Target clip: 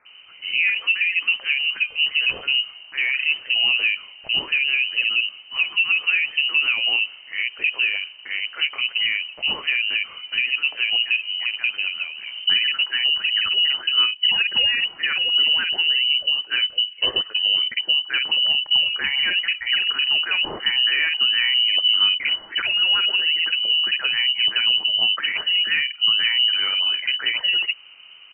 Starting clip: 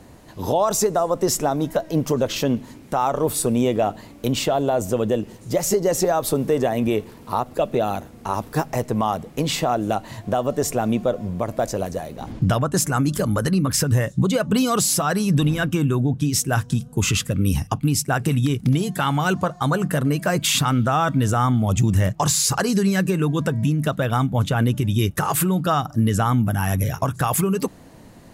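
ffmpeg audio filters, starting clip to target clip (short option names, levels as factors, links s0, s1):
-filter_complex "[0:a]acrossover=split=1100[s0][s1];[s0]adelay=50[s2];[s2][s1]amix=inputs=2:normalize=0,lowpass=f=2600:t=q:w=0.5098,lowpass=f=2600:t=q:w=0.6013,lowpass=f=2600:t=q:w=0.9,lowpass=f=2600:t=q:w=2.563,afreqshift=-3100"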